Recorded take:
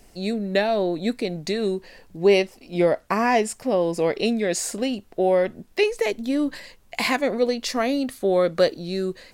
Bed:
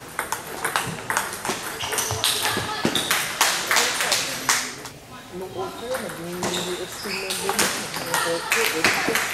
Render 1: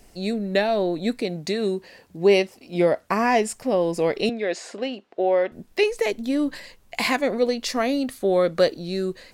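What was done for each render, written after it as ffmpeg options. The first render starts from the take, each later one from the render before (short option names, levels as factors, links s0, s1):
-filter_complex "[0:a]asettb=1/sr,asplit=3[s0][s1][s2];[s0]atrim=end=1.214[s3];[s1]atrim=start=1.21:end=3.09,asetpts=PTS-STARTPTS,afade=t=in:d=0.004:c=qsin,afade=t=out:st=1.876:d=0.004:c=qsin,highpass=75[s4];[s2]atrim=start=3.086[s5];[s3][s4]acrossfade=d=0.004:c1=hsin:c2=qsin[s6];[s6][s5]acrossfade=d=0.004:c1=qsin:c2=hsin,asettb=1/sr,asplit=3[s7][s8][s9];[s7]atrim=end=4.294[s10];[s8]atrim=start=4.29:end=5.52,asetpts=PTS-STARTPTS,afade=t=in:d=0.004:c=qsin,afade=t=out:st=1.226:d=0.004:c=qsin,highpass=340,lowpass=3600[s11];[s9]atrim=start=5.516[s12];[s10][s11]acrossfade=d=0.004:c1=hsin:c2=qsin[s13];[s13][s12]acrossfade=d=0.004:c1=qsin:c2=hsin"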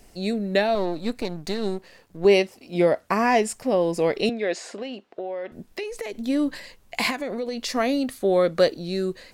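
-filter_complex "[0:a]asettb=1/sr,asplit=3[s0][s1][s2];[s0]atrim=end=0.754[s3];[s1]atrim=start=0.75:end=2.25,asetpts=PTS-STARTPTS,afade=t=in:d=0.004:c=qsin,afade=t=out:st=1.496:d=0.004:c=qsin,aeval=exprs='if(lt(val(0),0),0.251*val(0),val(0))':c=same[s4];[s2]atrim=start=2.246[s5];[s3][s4]acrossfade=d=0.004:c1=hsin:c2=qsin[s6];[s6][s5]acrossfade=d=0.004:c1=qsin:c2=hsin,asettb=1/sr,asplit=3[s7][s8][s9];[s7]atrim=end=4.654[s10];[s8]atrim=start=4.65:end=6.15,asetpts=PTS-STARTPTS,afade=t=in:d=0.004:c=qsin,afade=t=out:st=1.496:d=0.004:c=qsin,acompressor=threshold=0.0398:ratio=6:attack=3.2:release=140:knee=1:detection=peak[s11];[s9]atrim=start=6.146[s12];[s10][s11]acrossfade=d=0.004:c1=hsin:c2=qsin[s13];[s13][s12]acrossfade=d=0.004:c1=qsin:c2=hsin,asettb=1/sr,asplit=3[s14][s15][s16];[s14]atrim=end=7.104[s17];[s15]atrim=start=7.1:end=7.71,asetpts=PTS-STARTPTS,afade=t=in:d=0.004:c=qsin,afade=t=out:st=0.606:d=0.004:c=qsin,acompressor=threshold=0.0631:ratio=10:attack=3.2:release=140:knee=1:detection=peak[s18];[s16]atrim=start=7.706[s19];[s17][s18]acrossfade=d=0.004:c1=hsin:c2=qsin[s20];[s20][s19]acrossfade=d=0.004:c1=qsin:c2=hsin"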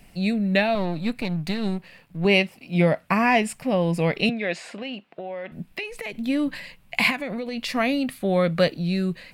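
-af "equalizer=f=160:t=o:w=0.67:g=11,equalizer=f=400:t=o:w=0.67:g=-7,equalizer=f=2500:t=o:w=0.67:g=8,equalizer=f=6300:t=o:w=0.67:g=-8"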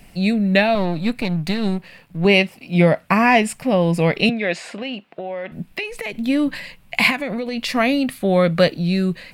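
-af "volume=1.78,alimiter=limit=0.708:level=0:latency=1"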